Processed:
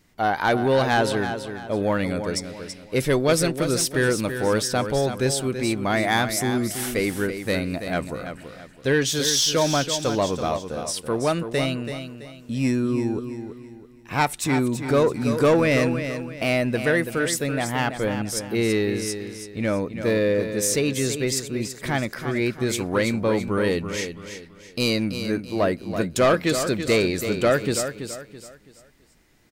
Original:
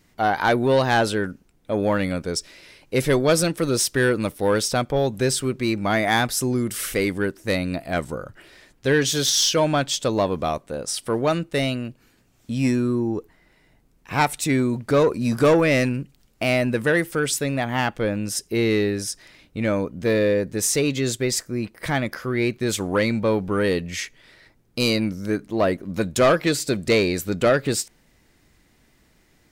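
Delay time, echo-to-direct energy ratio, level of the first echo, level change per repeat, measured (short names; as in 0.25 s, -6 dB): 0.331 s, -8.5 dB, -9.0 dB, -9.0 dB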